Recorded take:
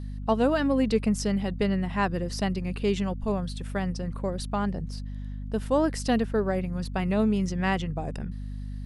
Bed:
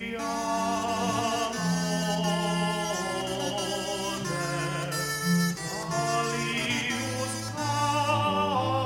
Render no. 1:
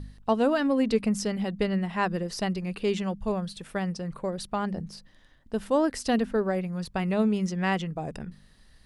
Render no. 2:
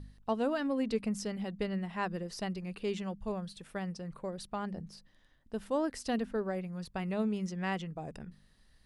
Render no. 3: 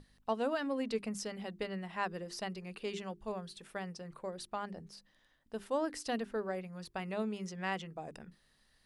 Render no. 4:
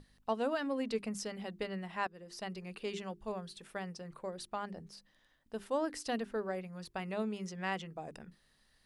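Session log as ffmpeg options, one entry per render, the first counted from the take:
-af "bandreject=f=50:t=h:w=4,bandreject=f=100:t=h:w=4,bandreject=f=150:t=h:w=4,bandreject=f=200:t=h:w=4,bandreject=f=250:t=h:w=4"
-af "volume=0.398"
-af "lowshelf=f=220:g=-10.5,bandreject=f=50:t=h:w=6,bandreject=f=100:t=h:w=6,bandreject=f=150:t=h:w=6,bandreject=f=200:t=h:w=6,bandreject=f=250:t=h:w=6,bandreject=f=300:t=h:w=6,bandreject=f=350:t=h:w=6,bandreject=f=400:t=h:w=6"
-filter_complex "[0:a]asplit=2[s0][s1];[s0]atrim=end=2.07,asetpts=PTS-STARTPTS,afade=t=out:st=2.066:d=0.004:c=hsin:silence=0.112202[s2];[s1]atrim=start=2.07,asetpts=PTS-STARTPTS,afade=t=in:d=0.5:silence=0.112202[s3];[s2][s3]concat=n=2:v=0:a=1"

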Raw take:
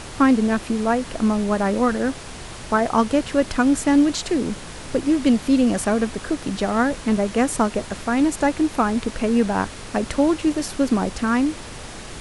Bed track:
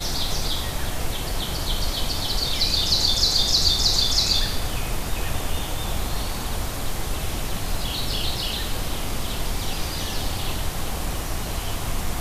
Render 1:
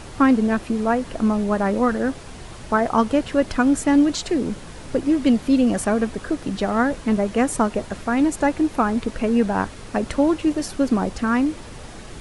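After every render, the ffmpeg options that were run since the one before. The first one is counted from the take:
-af "afftdn=nr=6:nf=-36"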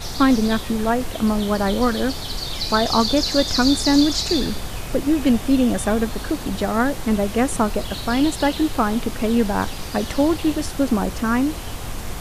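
-filter_complex "[1:a]volume=0.631[s0];[0:a][s0]amix=inputs=2:normalize=0"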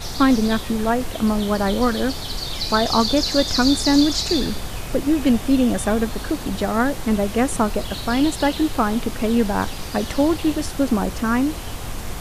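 -af anull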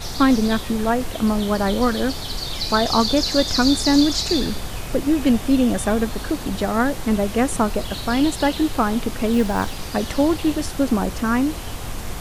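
-filter_complex "[0:a]asettb=1/sr,asplit=3[s0][s1][s2];[s0]atrim=end=9.334[s3];[s1]atrim=start=9.33:end=9.76,asetpts=PTS-STARTPTS,afade=t=in:d=0.004:c=qsin,afade=t=out:st=0.426:d=0.004:c=qsin,acrusher=bits=7:mode=log:mix=0:aa=0.000001[s4];[s2]atrim=start=9.756[s5];[s3][s4]acrossfade=d=0.004:c1=hsin:c2=qsin[s6];[s6][s5]acrossfade=d=0.004:c1=qsin:c2=hsin"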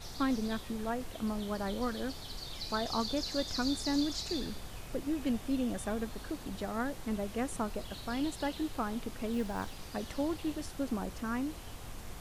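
-af "volume=0.168"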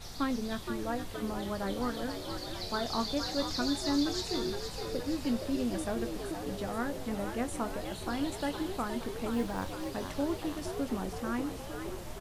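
-filter_complex "[0:a]asplit=2[s0][s1];[s1]adelay=21,volume=0.282[s2];[s0][s2]amix=inputs=2:normalize=0,asplit=9[s3][s4][s5][s6][s7][s8][s9][s10][s11];[s4]adelay=469,afreqshift=81,volume=0.398[s12];[s5]adelay=938,afreqshift=162,volume=0.245[s13];[s6]adelay=1407,afreqshift=243,volume=0.153[s14];[s7]adelay=1876,afreqshift=324,volume=0.0944[s15];[s8]adelay=2345,afreqshift=405,volume=0.0589[s16];[s9]adelay=2814,afreqshift=486,volume=0.0363[s17];[s10]adelay=3283,afreqshift=567,volume=0.0226[s18];[s11]adelay=3752,afreqshift=648,volume=0.014[s19];[s3][s12][s13][s14][s15][s16][s17][s18][s19]amix=inputs=9:normalize=0"

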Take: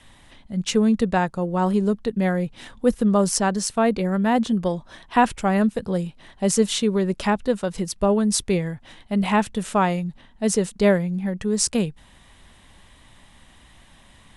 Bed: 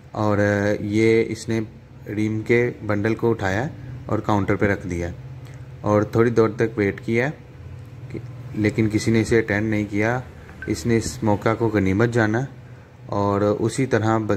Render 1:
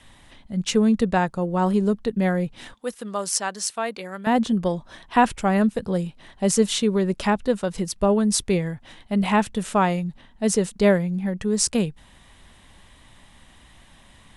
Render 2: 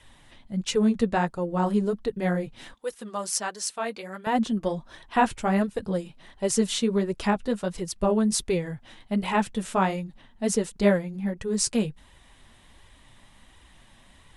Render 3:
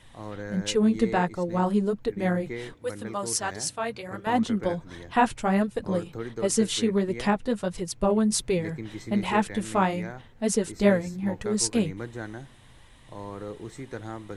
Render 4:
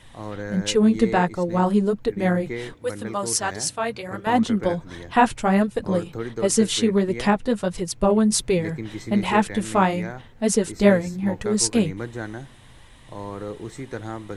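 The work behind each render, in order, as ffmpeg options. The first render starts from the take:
-filter_complex "[0:a]asettb=1/sr,asplit=3[s0][s1][s2];[s0]atrim=end=2.744[s3];[s1]atrim=start=2.74:end=4.27,asetpts=PTS-STARTPTS,afade=t=in:d=0.004:c=qsin,afade=t=out:st=1.526:d=0.004:c=qsin,highpass=f=1300:p=1[s4];[s2]atrim=start=4.266[s5];[s3][s4]acrossfade=d=0.004:c1=hsin:c2=qsin[s6];[s6][s5]acrossfade=d=0.004:c1=qsin:c2=hsin"
-af "flanger=delay=2:depth=7:regen=-25:speed=1.4:shape=sinusoidal"
-filter_complex "[1:a]volume=0.126[s0];[0:a][s0]amix=inputs=2:normalize=0"
-af "volume=1.68"

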